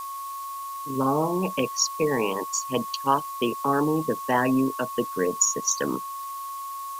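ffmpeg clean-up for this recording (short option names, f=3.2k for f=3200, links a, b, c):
-af "adeclick=t=4,bandreject=f=1.1k:w=30,afftdn=nr=30:nf=-35"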